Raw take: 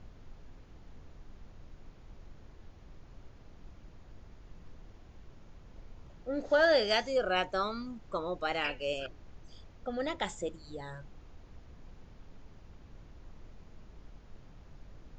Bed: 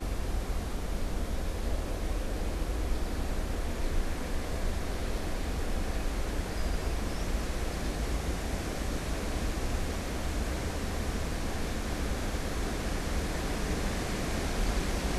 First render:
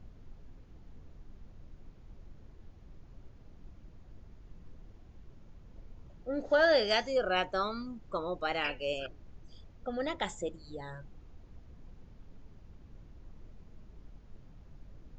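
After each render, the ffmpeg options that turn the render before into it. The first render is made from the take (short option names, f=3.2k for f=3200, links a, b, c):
-af "afftdn=nr=6:nf=-55"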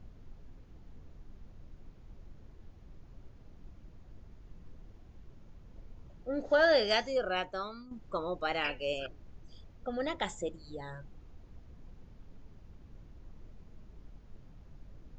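-filter_complex "[0:a]asplit=2[a][b];[a]atrim=end=7.91,asetpts=PTS-STARTPTS,afade=t=out:st=6.94:d=0.97:silence=0.281838[c];[b]atrim=start=7.91,asetpts=PTS-STARTPTS,afade=t=in:d=0.004:c=hsin:silence=0.281838[d];[c][d]concat=n=2:v=0:a=1"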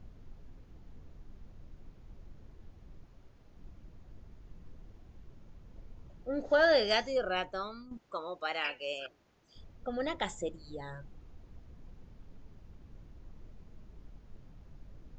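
-filter_complex "[0:a]asettb=1/sr,asplit=3[a][b][c];[a]atrim=end=3.054[d];[b]atrim=start=3.05:end=3.56,asetpts=PTS-STARTPTS,afade=t=in:d=0.004:c=qsin,afade=t=out:st=0.506:d=0.004:c=qsin,lowshelf=f=390:g=-6[e];[c]atrim=start=3.556[f];[d][e]acrossfade=d=0.004:c1=hsin:c2=qsin[g];[g][f]acrossfade=d=0.004:c1=qsin:c2=hsin,asettb=1/sr,asplit=3[h][i][j];[h]atrim=end=7.974[k];[i]atrim=start=7.97:end=9.56,asetpts=PTS-STARTPTS,afade=t=in:d=0.004:c=qsin,afade=t=out:st=1.586:d=0.004:c=qsin,highpass=f=740:p=1[l];[j]atrim=start=9.556[m];[k][l]acrossfade=d=0.004:c1=hsin:c2=qsin[n];[n][m]acrossfade=d=0.004:c1=qsin:c2=hsin"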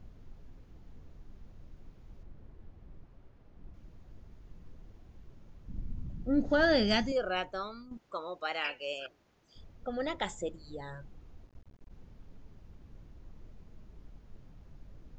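-filter_complex "[0:a]asettb=1/sr,asplit=3[a][b][c];[a]atrim=end=2.234[d];[b]atrim=start=2.23:end=3.74,asetpts=PTS-STARTPTS,afade=t=in:d=0.004:c=qsin,afade=t=out:st=1.506:d=0.004:c=qsin,aemphasis=mode=reproduction:type=75fm[e];[c]atrim=start=3.736[f];[d][e]acrossfade=d=0.004:c1=hsin:c2=qsin[g];[g][f]acrossfade=d=0.004:c1=qsin:c2=hsin,asettb=1/sr,asplit=3[h][i][j];[h]atrim=end=5.684[k];[i]atrim=start=5.68:end=7.12,asetpts=PTS-STARTPTS,afade=t=in:d=0.004:c=qsin,afade=t=out:st=1.436:d=0.004:c=qsin,lowshelf=f=330:t=q:w=1.5:g=11.5[l];[j]atrim=start=7.116[m];[k][l]acrossfade=d=0.004:c1=hsin:c2=qsin[n];[n][m]acrossfade=d=0.004:c1=qsin:c2=hsin,asplit=3[o][p][q];[o]afade=t=out:st=11.46:d=0.02[r];[p]aeval=exprs='max(val(0),0)':c=same,afade=t=in:st=11.46:d=0.02,afade=t=out:st=11.89:d=0.02[s];[q]afade=t=in:st=11.89:d=0.02[t];[r][s][t]amix=inputs=3:normalize=0"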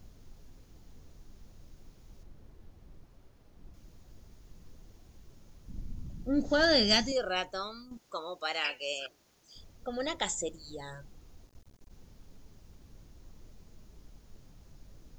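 -af "bass=f=250:g=-2,treble=f=4k:g=15"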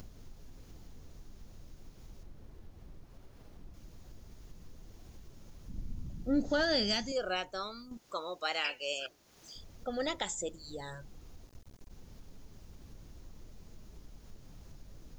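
-af "acompressor=mode=upward:threshold=-44dB:ratio=2.5,alimiter=limit=-21dB:level=0:latency=1:release=434"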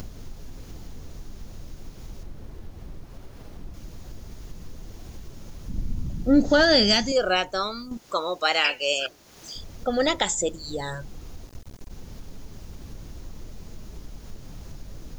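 -af "volume=12dB"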